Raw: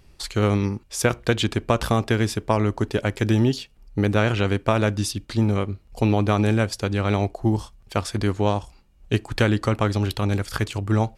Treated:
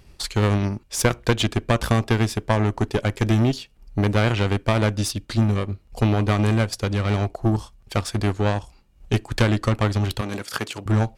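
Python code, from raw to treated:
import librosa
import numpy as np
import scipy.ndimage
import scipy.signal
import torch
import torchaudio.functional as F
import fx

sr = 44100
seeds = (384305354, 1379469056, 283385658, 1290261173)

y = fx.diode_clip(x, sr, knee_db=-22.0)
y = fx.highpass(y, sr, hz=220.0, slope=12, at=(10.21, 10.86))
y = fx.transient(y, sr, attack_db=1, sustain_db=-4)
y = y * librosa.db_to_amplitude(3.5)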